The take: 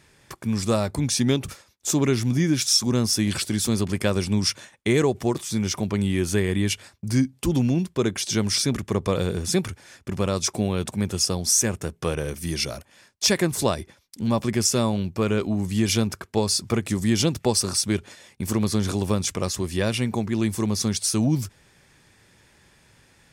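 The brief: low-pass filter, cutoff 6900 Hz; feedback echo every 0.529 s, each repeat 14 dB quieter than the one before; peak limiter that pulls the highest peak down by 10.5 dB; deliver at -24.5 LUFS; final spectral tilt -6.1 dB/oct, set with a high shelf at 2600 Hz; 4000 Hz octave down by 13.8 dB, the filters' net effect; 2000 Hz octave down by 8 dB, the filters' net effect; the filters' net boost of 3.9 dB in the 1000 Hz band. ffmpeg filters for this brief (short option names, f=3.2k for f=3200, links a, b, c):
-af "lowpass=6.9k,equalizer=f=1k:t=o:g=8.5,equalizer=f=2k:t=o:g=-7.5,highshelf=f=2.6k:g=-8,equalizer=f=4k:t=o:g=-9,alimiter=limit=-16.5dB:level=0:latency=1,aecho=1:1:529|1058:0.2|0.0399,volume=3.5dB"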